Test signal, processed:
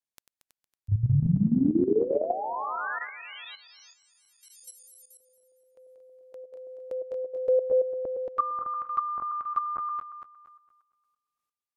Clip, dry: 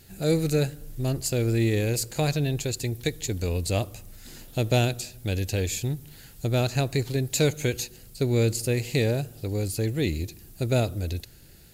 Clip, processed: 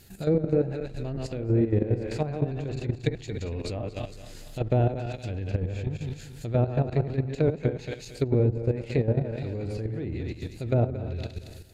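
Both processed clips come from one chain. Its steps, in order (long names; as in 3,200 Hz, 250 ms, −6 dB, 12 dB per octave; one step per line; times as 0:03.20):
feedback delay that plays each chunk backwards 115 ms, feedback 60%, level −4.5 dB
treble cut that deepens with the level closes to 920 Hz, closed at −19 dBFS
output level in coarse steps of 11 dB
level +1.5 dB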